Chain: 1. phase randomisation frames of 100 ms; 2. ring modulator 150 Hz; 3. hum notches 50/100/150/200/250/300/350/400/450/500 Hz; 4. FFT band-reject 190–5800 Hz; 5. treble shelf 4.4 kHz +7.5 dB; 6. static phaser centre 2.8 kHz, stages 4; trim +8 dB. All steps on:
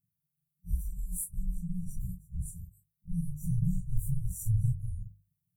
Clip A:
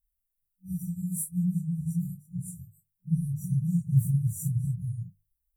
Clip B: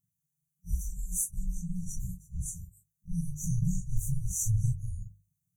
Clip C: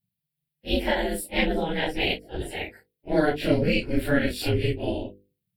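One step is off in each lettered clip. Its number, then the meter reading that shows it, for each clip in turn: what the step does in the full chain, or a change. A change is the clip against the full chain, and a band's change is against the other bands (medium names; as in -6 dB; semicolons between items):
2, momentary loudness spread change -1 LU; 6, momentary loudness spread change -2 LU; 4, crest factor change +2.5 dB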